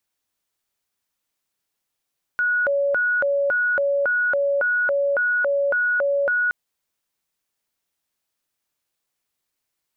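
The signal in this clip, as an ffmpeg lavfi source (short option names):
-f lavfi -i "aevalsrc='0.133*sin(2*PI*(1011.5*t+448.5/1.8*(0.5-abs(mod(1.8*t,1)-0.5))))':d=4.12:s=44100"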